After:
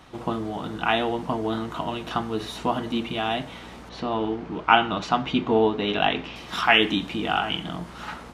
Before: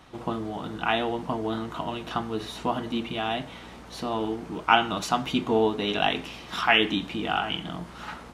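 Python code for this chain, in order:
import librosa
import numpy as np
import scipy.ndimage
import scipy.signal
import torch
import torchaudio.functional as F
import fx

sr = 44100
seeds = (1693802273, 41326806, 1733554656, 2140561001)

y = fx.lowpass(x, sr, hz=3800.0, slope=12, at=(3.89, 6.36))
y = y * 10.0 ** (2.5 / 20.0)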